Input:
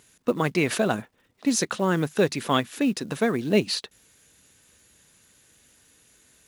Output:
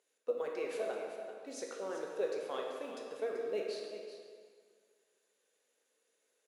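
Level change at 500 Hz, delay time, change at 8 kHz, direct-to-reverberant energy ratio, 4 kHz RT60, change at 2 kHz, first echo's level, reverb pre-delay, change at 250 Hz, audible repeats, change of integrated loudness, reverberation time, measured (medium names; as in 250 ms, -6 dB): -10.0 dB, 385 ms, -21.5 dB, -1.0 dB, 1.5 s, -18.5 dB, -11.0 dB, 14 ms, -24.5 dB, 1, -15.0 dB, 1.9 s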